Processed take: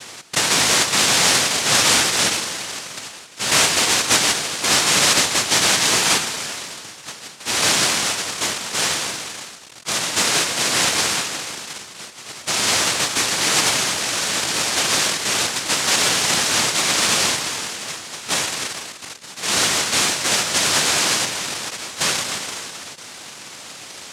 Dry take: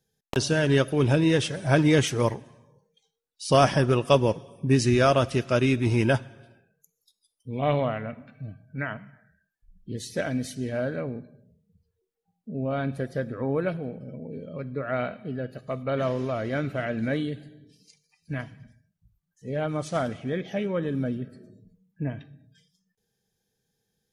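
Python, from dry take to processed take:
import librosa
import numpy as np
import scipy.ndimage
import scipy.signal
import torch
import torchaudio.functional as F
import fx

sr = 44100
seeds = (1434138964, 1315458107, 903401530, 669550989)

y = fx.power_curve(x, sr, exponent=0.35)
y = fx.noise_vocoder(y, sr, seeds[0], bands=1)
y = y * 10.0 ** (-4.5 / 20.0)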